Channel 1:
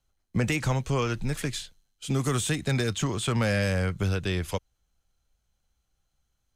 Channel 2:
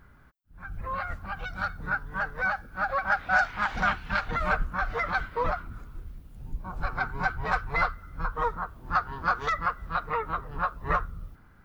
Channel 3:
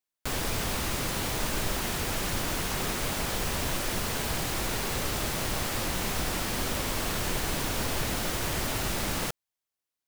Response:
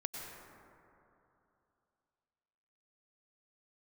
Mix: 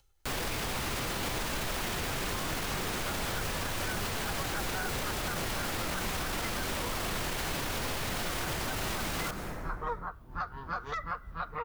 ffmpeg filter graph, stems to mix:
-filter_complex "[0:a]aecho=1:1:2.3:0.65,acompressor=mode=upward:threshold=-45dB:ratio=2.5,volume=-11.5dB[link_01];[1:a]adelay=1450,volume=-5.5dB[link_02];[2:a]volume=2.5dB,asplit=2[link_03][link_04];[link_04]volume=-5.5dB[link_05];[3:a]atrim=start_sample=2205[link_06];[link_05][link_06]afir=irnorm=-1:irlink=0[link_07];[link_01][link_02][link_03][link_07]amix=inputs=4:normalize=0,acrossover=split=650|4600[link_08][link_09][link_10];[link_08]acompressor=threshold=-32dB:ratio=4[link_11];[link_09]acompressor=threshold=-33dB:ratio=4[link_12];[link_10]acompressor=threshold=-39dB:ratio=4[link_13];[link_11][link_12][link_13]amix=inputs=3:normalize=0,alimiter=level_in=0.5dB:limit=-24dB:level=0:latency=1:release=18,volume=-0.5dB"

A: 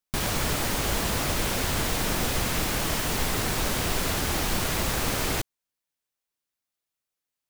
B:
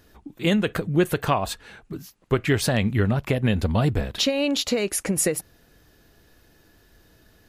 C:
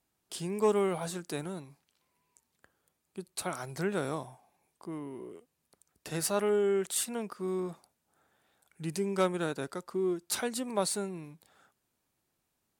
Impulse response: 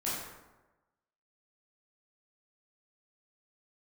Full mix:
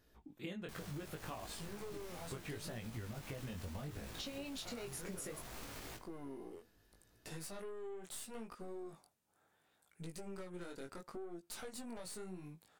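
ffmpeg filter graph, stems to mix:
-filter_complex "[0:a]adelay=550,volume=-15.5dB,asplit=2[link_01][link_02];[link_02]volume=-19.5dB[link_03];[1:a]alimiter=limit=-13dB:level=0:latency=1:release=315,volume=-11.5dB[link_04];[2:a]acompressor=threshold=-32dB:ratio=6,adelay=1200,volume=2dB[link_05];[link_01][link_05]amix=inputs=2:normalize=0,aeval=exprs='(tanh(44.7*val(0)+0.65)-tanh(0.65))/44.7':channel_layout=same,alimiter=level_in=8.5dB:limit=-24dB:level=0:latency=1:release=177,volume=-8.5dB,volume=0dB[link_06];[3:a]atrim=start_sample=2205[link_07];[link_03][link_07]afir=irnorm=-1:irlink=0[link_08];[link_04][link_06][link_08]amix=inputs=3:normalize=0,flanger=delay=17.5:depth=5.2:speed=0.7,acompressor=threshold=-43dB:ratio=4"

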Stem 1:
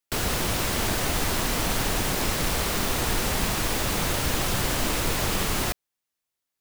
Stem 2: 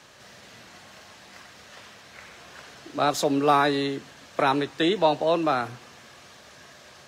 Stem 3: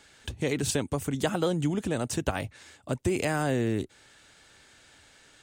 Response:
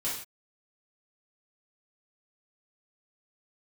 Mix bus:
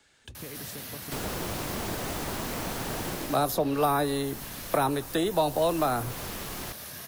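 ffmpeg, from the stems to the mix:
-filter_complex "[0:a]adelay=1000,volume=1.5dB,afade=type=out:start_time=3.08:duration=0.29:silence=0.237137,afade=type=in:start_time=5.48:duration=0.3:silence=0.473151[link_01];[1:a]bass=frequency=250:gain=7,treble=frequency=4000:gain=7,aexciter=amount=6.1:drive=8.5:freq=10000,adelay=350,volume=2.5dB[link_02];[2:a]acompressor=threshold=-33dB:ratio=6,volume=-7dB[link_03];[link_01][link_02][link_03]amix=inputs=3:normalize=0,acrossover=split=83|550|1200|5600[link_04][link_05][link_06][link_07][link_08];[link_04]acompressor=threshold=-43dB:ratio=4[link_09];[link_05]acompressor=threshold=-31dB:ratio=4[link_10];[link_06]acompressor=threshold=-25dB:ratio=4[link_11];[link_07]acompressor=threshold=-41dB:ratio=4[link_12];[link_08]acompressor=threshold=-39dB:ratio=4[link_13];[link_09][link_10][link_11][link_12][link_13]amix=inputs=5:normalize=0"

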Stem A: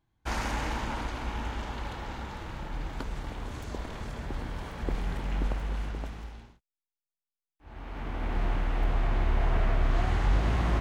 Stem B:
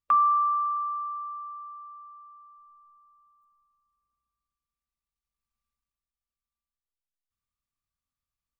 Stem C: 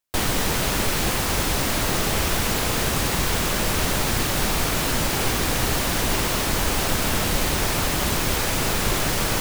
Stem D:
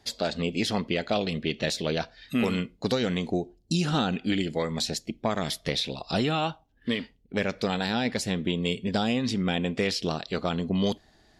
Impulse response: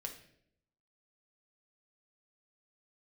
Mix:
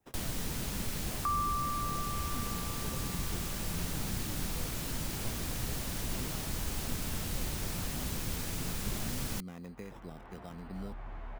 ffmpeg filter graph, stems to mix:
-filter_complex "[0:a]equalizer=frequency=980:width=0.44:gain=10,asplit=2[link_01][link_02];[link_02]adelay=10.5,afreqshift=0.67[link_03];[link_01][link_03]amix=inputs=2:normalize=1,adelay=1950,volume=-17dB[link_04];[1:a]adelay=1150,volume=1.5dB[link_05];[2:a]highshelf=frequency=3700:gain=7.5,volume=-11dB[link_06];[3:a]highshelf=frequency=5900:gain=-8,acrusher=samples=10:mix=1:aa=0.000001,adynamicequalizer=threshold=0.00562:dfrequency=2400:dqfactor=0.7:tfrequency=2400:tqfactor=0.7:attack=5:release=100:ratio=0.375:range=2.5:mode=cutabove:tftype=highshelf,volume=-15.5dB[link_07];[link_04][link_05][link_06][link_07]amix=inputs=4:normalize=0,acrossover=split=260[link_08][link_09];[link_09]acompressor=threshold=-55dB:ratio=1.5[link_10];[link_08][link_10]amix=inputs=2:normalize=0"

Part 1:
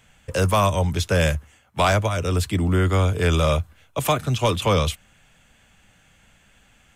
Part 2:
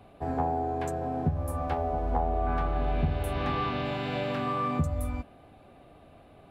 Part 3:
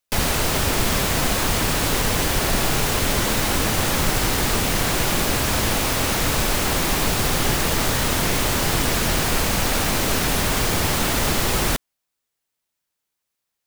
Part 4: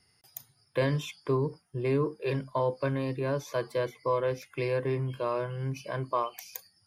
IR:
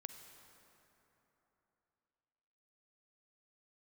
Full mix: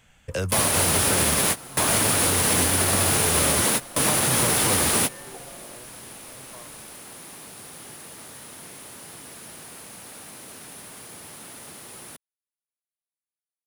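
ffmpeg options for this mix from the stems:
-filter_complex "[0:a]acompressor=threshold=-22dB:ratio=5,volume=-2dB,asplit=2[link_01][link_02];[1:a]aeval=exprs='val(0)*sin(2*PI*620*n/s)':channel_layout=same,adelay=550,volume=-15.5dB[link_03];[2:a]highpass=140,equalizer=frequency=9900:width=3.5:gain=15,adelay=400,volume=0.5dB[link_04];[3:a]asplit=2[link_05][link_06];[link_06]afreqshift=0.36[link_07];[link_05][link_07]amix=inputs=2:normalize=1,adelay=400,volume=-16.5dB[link_08];[link_02]apad=whole_len=620254[link_09];[link_04][link_09]sidechaingate=range=-23dB:threshold=-47dB:ratio=16:detection=peak[link_10];[link_01][link_03][link_10][link_08]amix=inputs=4:normalize=0,alimiter=limit=-10.5dB:level=0:latency=1:release=85"

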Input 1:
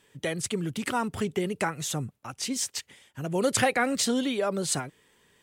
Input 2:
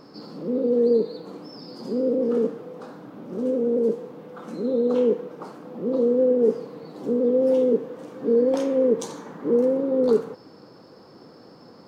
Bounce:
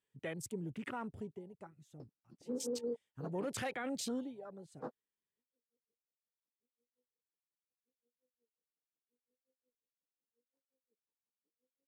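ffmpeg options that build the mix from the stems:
ffmpeg -i stem1.wav -i stem2.wav -filter_complex "[0:a]volume=1dB,afade=type=out:start_time=1.02:duration=0.42:silence=0.266073,afade=type=in:start_time=2.34:duration=0.43:silence=0.251189,afade=type=out:start_time=4.13:duration=0.23:silence=0.281838,asplit=2[link_01][link_02];[1:a]aeval=exprs='val(0)*pow(10,-33*(0.5-0.5*cos(2*PI*5.6*n/s))/20)':channel_layout=same,adelay=2000,volume=0dB,asplit=3[link_03][link_04][link_05];[link_03]atrim=end=3.57,asetpts=PTS-STARTPTS,afade=type=out:start_time=3.566:duration=0.004:curve=hsin[link_06];[link_04]atrim=start=3.57:end=4.75,asetpts=PTS-STARTPTS,volume=0[link_07];[link_05]atrim=start=4.75,asetpts=PTS-STARTPTS,afade=type=in:duration=0.004:curve=hsin[link_08];[link_06][link_07][link_08]concat=n=3:v=0:a=1[link_09];[link_02]apad=whole_len=611966[link_10];[link_09][link_10]sidechaingate=range=-49dB:threshold=-59dB:ratio=16:detection=peak[link_11];[link_01][link_11]amix=inputs=2:normalize=0,afwtdn=0.00355,alimiter=level_in=7dB:limit=-24dB:level=0:latency=1:release=25,volume=-7dB" out.wav

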